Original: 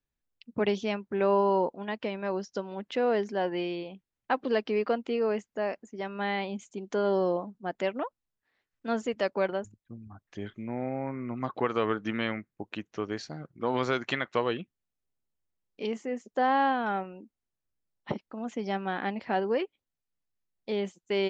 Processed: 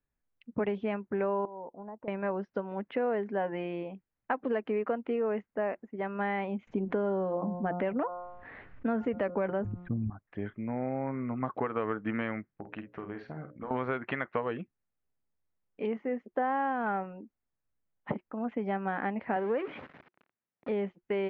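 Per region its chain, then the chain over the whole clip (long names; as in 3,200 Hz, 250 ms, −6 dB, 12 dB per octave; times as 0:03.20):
0:01.45–0:02.08: downward compressor 4 to 1, threshold −35 dBFS + transistor ladder low-pass 1,100 Hz, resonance 35%
0:06.67–0:10.10: low-shelf EQ 270 Hz +7.5 dB + hum removal 177.4 Hz, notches 8 + envelope flattener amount 50%
0:12.50–0:13.71: downward compressor, threshold −36 dBFS + mains-hum notches 60/120/180/240/300/360/420/480/540/600 Hz + double-tracking delay 50 ms −7 dB
0:19.36–0:20.69: converter with a step at zero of −34 dBFS + high-pass filter 160 Hz
whole clip: downward compressor 5 to 1, threshold −29 dBFS; low-pass filter 2,200 Hz 24 dB per octave; notch filter 360 Hz, Q 12; level +2 dB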